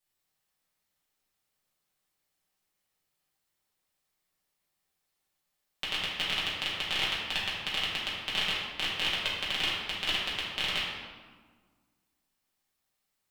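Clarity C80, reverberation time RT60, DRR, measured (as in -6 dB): 2.5 dB, 1.5 s, -8.0 dB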